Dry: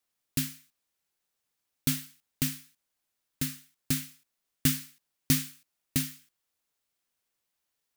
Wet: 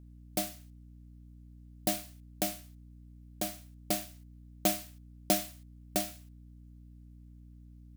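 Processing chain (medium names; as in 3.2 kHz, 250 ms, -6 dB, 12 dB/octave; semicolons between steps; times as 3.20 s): ring modulator 460 Hz; hum 60 Hz, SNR 13 dB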